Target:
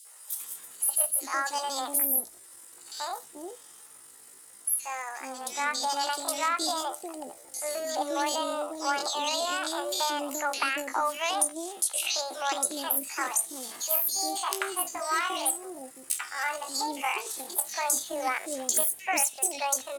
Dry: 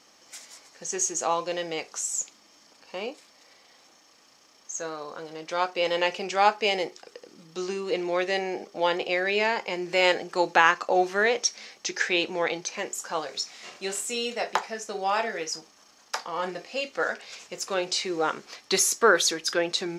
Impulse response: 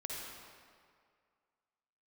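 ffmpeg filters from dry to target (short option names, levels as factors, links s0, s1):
-filter_complex "[0:a]bass=f=250:g=8,treble=f=4000:g=11,acompressor=threshold=0.0708:ratio=8,acrossover=split=330|2000[s0][s1][s2];[s1]adelay=80[s3];[s0]adelay=430[s4];[s4][s3][s2]amix=inputs=3:normalize=0,asetrate=72056,aresample=44100,atempo=0.612027,volume=1.12"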